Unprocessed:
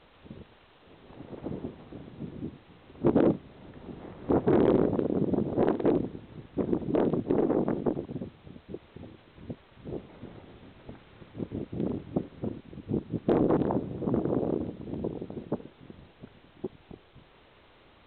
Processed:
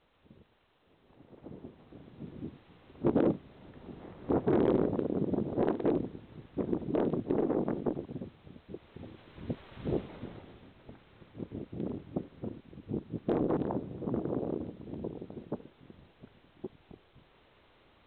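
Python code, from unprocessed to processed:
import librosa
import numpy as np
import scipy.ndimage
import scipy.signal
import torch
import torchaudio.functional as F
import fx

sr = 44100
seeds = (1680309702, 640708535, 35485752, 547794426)

y = fx.gain(x, sr, db=fx.line((1.35, -12.0), (2.43, -4.0), (8.74, -4.0), (9.87, 6.5), (10.75, -5.5)))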